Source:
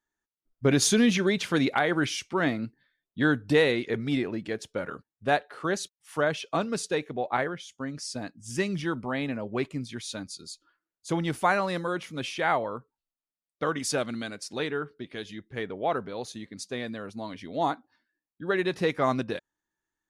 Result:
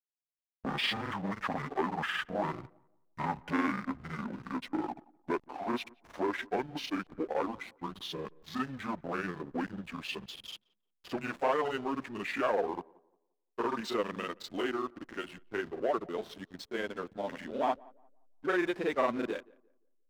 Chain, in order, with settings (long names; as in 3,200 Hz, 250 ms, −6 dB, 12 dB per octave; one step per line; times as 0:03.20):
pitch glide at a constant tempo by −12 semitones ending unshifted
in parallel at +1.5 dB: downward compressor 6 to 1, threshold −35 dBFS, peak gain reduction 16 dB
on the sum: soft clipping −20.5 dBFS, distortion −12 dB
three-way crossover with the lows and the highs turned down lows −24 dB, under 240 Hz, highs −15 dB, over 3,600 Hz
granular cloud, grains 20 per second, spray 35 ms, pitch spread up and down by 0 semitones
slack as between gear wheels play −41.5 dBFS
on a send: tape delay 175 ms, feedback 32%, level −23 dB, low-pass 1,300 Hz